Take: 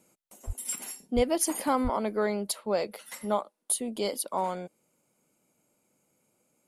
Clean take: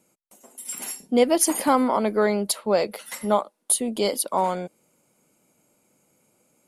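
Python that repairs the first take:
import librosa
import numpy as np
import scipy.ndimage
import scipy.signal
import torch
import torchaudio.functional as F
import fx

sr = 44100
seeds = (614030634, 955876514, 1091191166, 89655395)

y = fx.fix_deplosive(x, sr, at_s=(0.46, 1.15, 1.83))
y = fx.fix_level(y, sr, at_s=0.76, step_db=7.0)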